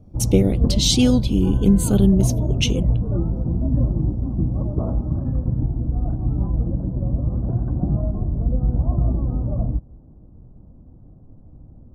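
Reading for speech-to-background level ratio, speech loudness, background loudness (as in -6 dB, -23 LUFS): 3.5 dB, -19.5 LUFS, -23.0 LUFS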